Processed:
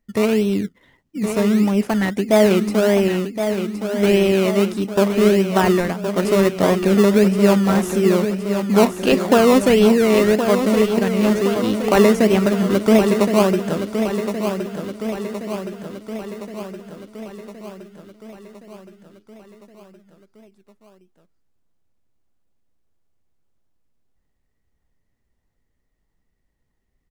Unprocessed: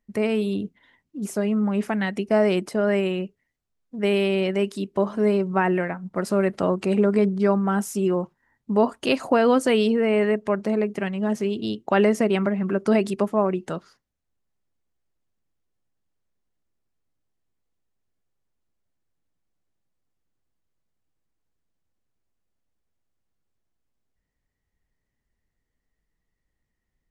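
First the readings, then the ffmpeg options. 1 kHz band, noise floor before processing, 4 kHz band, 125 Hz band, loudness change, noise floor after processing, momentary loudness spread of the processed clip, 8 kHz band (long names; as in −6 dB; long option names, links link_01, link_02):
+5.0 dB, −80 dBFS, +7.5 dB, +7.0 dB, +5.5 dB, −71 dBFS, 17 LU, +10.5 dB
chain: -filter_complex "[0:a]asplit=2[link_01][link_02];[link_02]acrusher=samples=22:mix=1:aa=0.000001:lfo=1:lforange=13.2:lforate=1.6,volume=-3dB[link_03];[link_01][link_03]amix=inputs=2:normalize=0,aecho=1:1:1068|2136|3204|4272|5340|6408|7476:0.398|0.235|0.139|0.0818|0.0482|0.0285|0.0168,volume=1.5dB"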